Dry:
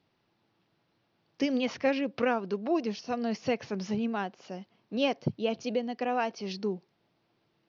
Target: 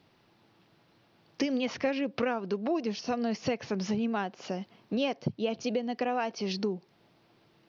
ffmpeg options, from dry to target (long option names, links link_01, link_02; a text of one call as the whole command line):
ffmpeg -i in.wav -af "acompressor=threshold=-39dB:ratio=3,volume=9dB" out.wav